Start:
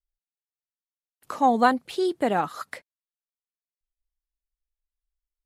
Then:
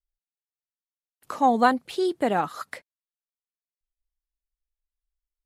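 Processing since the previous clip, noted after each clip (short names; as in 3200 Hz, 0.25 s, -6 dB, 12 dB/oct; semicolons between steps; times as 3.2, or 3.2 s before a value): nothing audible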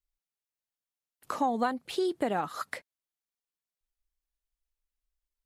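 compressor 4:1, threshold -26 dBFS, peak gain reduction 11.5 dB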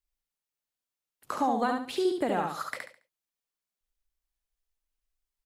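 feedback echo 70 ms, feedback 29%, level -4 dB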